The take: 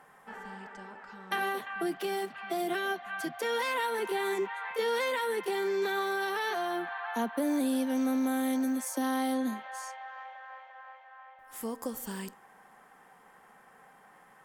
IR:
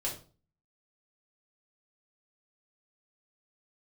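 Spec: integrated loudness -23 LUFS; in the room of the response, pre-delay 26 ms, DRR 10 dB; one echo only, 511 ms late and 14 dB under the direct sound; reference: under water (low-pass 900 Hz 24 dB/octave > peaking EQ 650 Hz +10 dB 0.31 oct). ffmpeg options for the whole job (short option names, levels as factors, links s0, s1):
-filter_complex "[0:a]aecho=1:1:511:0.2,asplit=2[s0][s1];[1:a]atrim=start_sample=2205,adelay=26[s2];[s1][s2]afir=irnorm=-1:irlink=0,volume=0.224[s3];[s0][s3]amix=inputs=2:normalize=0,lowpass=f=900:w=0.5412,lowpass=f=900:w=1.3066,equalizer=f=650:t=o:w=0.31:g=10,volume=2.82"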